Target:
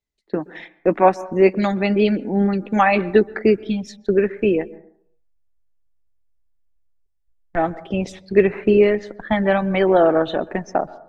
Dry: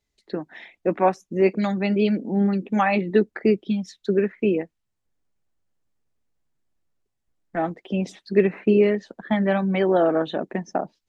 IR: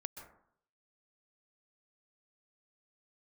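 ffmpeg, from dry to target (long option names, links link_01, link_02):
-filter_complex "[0:a]agate=range=-14dB:threshold=-42dB:ratio=16:detection=peak,asubboost=boost=10.5:cutoff=60,asplit=2[link_01][link_02];[1:a]atrim=start_sample=2205,lowpass=3500[link_03];[link_02][link_03]afir=irnorm=-1:irlink=0,volume=-9dB[link_04];[link_01][link_04]amix=inputs=2:normalize=0,volume=4dB"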